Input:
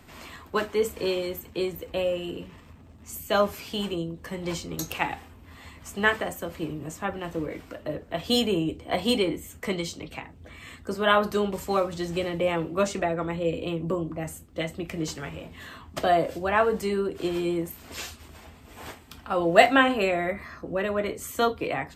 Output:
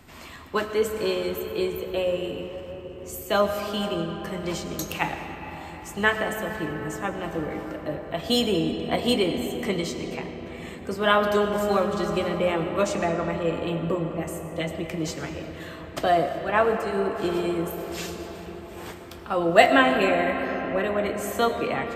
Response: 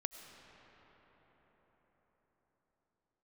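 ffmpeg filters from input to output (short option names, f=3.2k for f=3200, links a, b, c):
-filter_complex "[0:a]asettb=1/sr,asplit=3[a][b][c];[a]atrim=end=16.294[d];[b]atrim=start=16.29:end=16.95,asetpts=PTS-STARTPTS,afade=t=in:d=0.004:c=qsin,afade=t=out:st=0.656:d=0.004:c=qsin,agate=range=-8dB:threshold=-25dB:ratio=16:detection=peak[e];[c]atrim=start=16.946[f];[d][e]acrossfade=d=0.004:c1=hsin:c2=qsin[g];[g][f]acrossfade=d=0.004:c1=qsin:c2=hsin[h];[1:a]atrim=start_sample=2205[i];[h][i]afir=irnorm=-1:irlink=0,volume=3dB"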